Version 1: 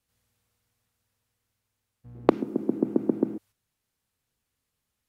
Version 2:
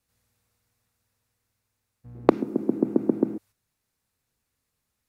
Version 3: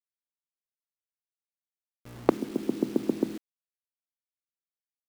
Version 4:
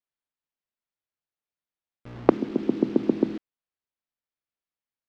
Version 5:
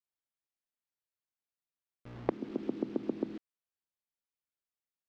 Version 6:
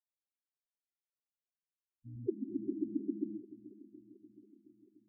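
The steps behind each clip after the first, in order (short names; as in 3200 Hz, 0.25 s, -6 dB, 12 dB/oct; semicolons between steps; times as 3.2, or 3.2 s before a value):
bell 3100 Hz -5.5 dB 0.24 oct; gain +2 dB
bit-crush 7-bit; gain -4.5 dB
air absorption 200 m; gain +5 dB
compressor 2:1, threshold -26 dBFS, peak gain reduction 9.5 dB; gain -6.5 dB
loudest bins only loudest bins 4; swung echo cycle 0.719 s, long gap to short 1.5:1, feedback 48%, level -17 dB; gain +2.5 dB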